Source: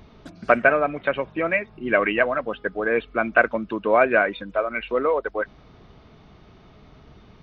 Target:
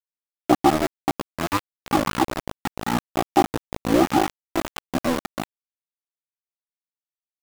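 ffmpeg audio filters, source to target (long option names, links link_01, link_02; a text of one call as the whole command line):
ffmpeg -i in.wav -af "asetrate=22696,aresample=44100,atempo=1.94306,aeval=exprs='val(0)*gte(abs(val(0)),0.119)':channel_layout=same" out.wav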